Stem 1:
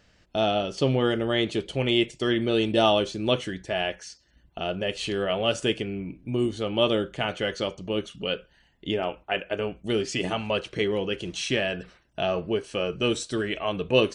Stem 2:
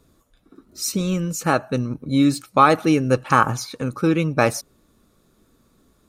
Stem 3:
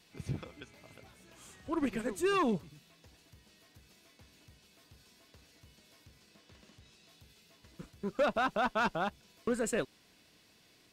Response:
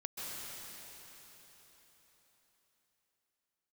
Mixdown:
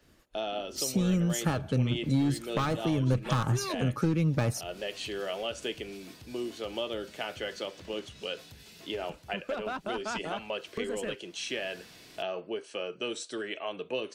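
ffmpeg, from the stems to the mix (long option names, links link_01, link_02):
-filter_complex "[0:a]highpass=330,volume=-5.5dB[link_01];[1:a]agate=range=-33dB:threshold=-53dB:ratio=3:detection=peak,asoftclip=type=hard:threshold=-14dB,volume=1dB[link_02];[2:a]acompressor=mode=upward:threshold=-37dB:ratio=2.5,adelay=1300,volume=-2dB[link_03];[link_01][link_02][link_03]amix=inputs=3:normalize=0,equalizer=frequency=1100:width=5.7:gain=-2,acrossover=split=160[link_04][link_05];[link_05]acompressor=threshold=-30dB:ratio=5[link_06];[link_04][link_06]amix=inputs=2:normalize=0"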